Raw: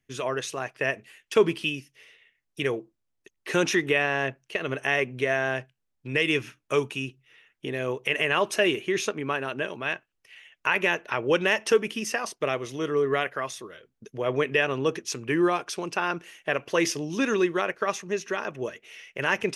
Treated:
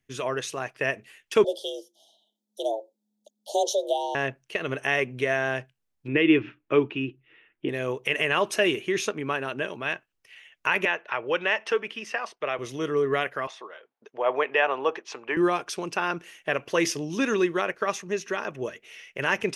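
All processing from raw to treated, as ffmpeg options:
ffmpeg -i in.wav -filter_complex "[0:a]asettb=1/sr,asplit=3[link_01][link_02][link_03];[link_01]atrim=end=1.444[link_04];[link_02]atrim=start=1.44:end=4.15,asetpts=PTS-STARTPTS,afade=type=in:duration=0.004:curve=qsin,afade=type=out:start_time=2.706:duration=0.004:curve=qsin,asuperstop=centerf=1500:order=20:qfactor=0.66,afreqshift=210[link_05];[link_03]atrim=start=4.146[link_06];[link_04][link_05]acrossfade=duration=0.004:curve1=hsin:curve2=qsin[link_07];[link_07][link_06]acrossfade=duration=0.004:curve1=qsin:curve2=hsin,asettb=1/sr,asplit=3[link_08][link_09][link_10];[link_08]atrim=end=6.084[link_11];[link_09]atrim=start=6.08:end=7.69,asetpts=PTS-STARTPTS,afade=type=in:duration=0.004:curve=qsin,afade=type=out:start_time=1.606:duration=0.004:curve=qsin,lowpass=frequency=3100:width=0.5412,lowpass=frequency=3100:width=1.3066,equalizer=frequency=320:width_type=o:width=0.52:gain=11[link_12];[link_10]atrim=start=7.686[link_13];[link_11][link_12]acrossfade=duration=0.004:curve1=hsin:curve2=qsin[link_14];[link_14][link_13]acrossfade=duration=0.004:curve1=qsin:curve2=hsin,asettb=1/sr,asplit=3[link_15][link_16][link_17];[link_15]atrim=end=10.854[link_18];[link_16]atrim=start=10.85:end=12.59,asetpts=PTS-STARTPTS,afade=type=in:duration=0.004:curve=qsin,afade=type=out:start_time=1.736:duration=0.004:curve=qsin,lowpass=11000,acrossover=split=470 3900:gain=0.251 1 0.158[link_19][link_20][link_21];[link_19][link_20][link_21]amix=inputs=3:normalize=0[link_22];[link_17]atrim=start=12.586[link_23];[link_18][link_22]acrossfade=duration=0.004:curve1=hsin:curve2=qsin[link_24];[link_24][link_23]acrossfade=duration=0.004:curve1=qsin:curve2=hsin,asettb=1/sr,asplit=3[link_25][link_26][link_27];[link_25]atrim=end=13.474[link_28];[link_26]atrim=start=13.47:end=15.37,asetpts=PTS-STARTPTS,afade=type=in:duration=0.004:curve=qsin,afade=type=out:start_time=1.896:duration=0.004:curve=qsin,highpass=490,lowpass=3300,equalizer=frequency=830:width_type=o:width=0.94:gain=10.5[link_29];[link_27]atrim=start=15.366[link_30];[link_28][link_29]acrossfade=duration=0.004:curve1=hsin:curve2=qsin[link_31];[link_31][link_30]acrossfade=duration=0.004:curve1=qsin:curve2=hsin" out.wav

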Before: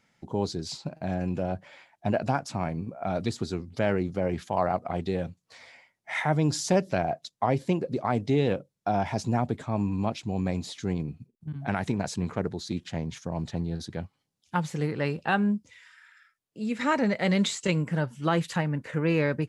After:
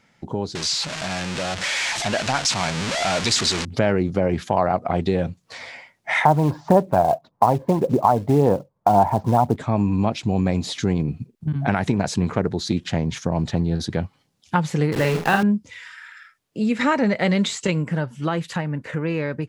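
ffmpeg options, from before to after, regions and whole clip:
ffmpeg -i in.wav -filter_complex "[0:a]asettb=1/sr,asplit=3[link_01][link_02][link_03];[link_01]atrim=end=0.554[link_04];[link_02]atrim=start=0.55:end=3.65,asetpts=PTS-STARTPTS,afade=type=in:duration=0.004:curve=qsin,afade=type=out:start_time=3.096:duration=0.004:curve=qsin,aeval=exprs='val(0)+0.5*0.0473*sgn(val(0))':channel_layout=same,lowpass=frequency=8200:width=0.5412,lowpass=frequency=8200:width=1.3066,tiltshelf=frequency=1200:gain=-9.5[link_05];[link_03]atrim=start=3.646[link_06];[link_04][link_05]acrossfade=duration=0.004:curve1=hsin:curve2=qsin[link_07];[link_07][link_06]acrossfade=duration=0.004:curve1=qsin:curve2=hsin,asettb=1/sr,asplit=3[link_08][link_09][link_10];[link_08]atrim=end=6.254[link_11];[link_09]atrim=start=6.25:end=9.56,asetpts=PTS-STARTPTS,afade=type=in:duration=0.004:curve=qsin,afade=type=out:start_time=3.306:duration=0.004:curve=qsin,lowpass=frequency=940:width_type=q:width=3.4,acrusher=bits=6:mode=log:mix=0:aa=0.000001,aphaser=in_gain=1:out_gain=1:delay=1.9:decay=0.32:speed=1.8:type=sinusoidal[link_12];[link_10]atrim=start=9.556[link_13];[link_11][link_12]acrossfade=duration=0.004:curve1=hsin:curve2=qsin[link_14];[link_14][link_13]acrossfade=duration=0.004:curve1=qsin:curve2=hsin,asettb=1/sr,asplit=3[link_15][link_16][link_17];[link_15]atrim=end=14.924[link_18];[link_16]atrim=start=14.92:end=15.43,asetpts=PTS-STARTPTS,afade=type=in:duration=0.004:curve=qsin,afade=type=out:start_time=0.506:duration=0.004:curve=qsin,bandreject=frequency=210.3:width_type=h:width=4,bandreject=frequency=420.6:width_type=h:width=4,bandreject=frequency=630.9:width_type=h:width=4,bandreject=frequency=841.2:width_type=h:width=4,bandreject=frequency=1051.5:width_type=h:width=4,bandreject=frequency=1261.8:width_type=h:width=4,bandreject=frequency=1472.1:width_type=h:width=4,bandreject=frequency=1682.4:width_type=h:width=4,bandreject=frequency=1892.7:width_type=h:width=4,acrusher=bits=7:dc=4:mix=0:aa=0.000001,asplit=2[link_19][link_20];[link_20]adelay=47,volume=-4.5dB[link_21];[link_19][link_21]amix=inputs=2:normalize=0,atrim=end_sample=22491[link_22];[link_17]atrim=start=15.426[link_23];[link_18][link_22]acrossfade=duration=0.004:curve1=hsin:curve2=qsin[link_24];[link_24][link_23]acrossfade=duration=0.004:curve1=qsin:curve2=hsin,acompressor=threshold=-35dB:ratio=2,highshelf=frequency=7100:gain=-6,dynaudnorm=framelen=250:gausssize=17:maxgain=5.5dB,volume=8.5dB" out.wav

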